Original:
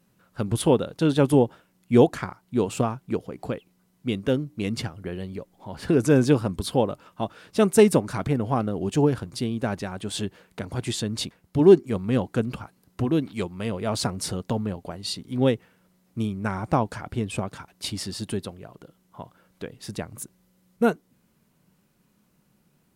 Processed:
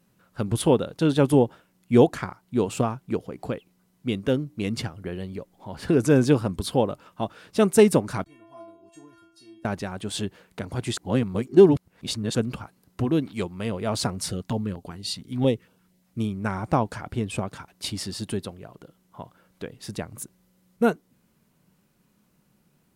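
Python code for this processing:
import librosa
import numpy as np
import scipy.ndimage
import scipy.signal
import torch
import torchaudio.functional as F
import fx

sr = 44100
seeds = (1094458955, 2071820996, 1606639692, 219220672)

y = fx.stiff_resonator(x, sr, f0_hz=330.0, decay_s=0.71, stiffness=0.008, at=(8.24, 9.65))
y = fx.filter_held_notch(y, sr, hz=8.7, low_hz=370.0, high_hz=1900.0, at=(14.18, 16.19))
y = fx.edit(y, sr, fx.reverse_span(start_s=10.97, length_s=1.38), tone=tone)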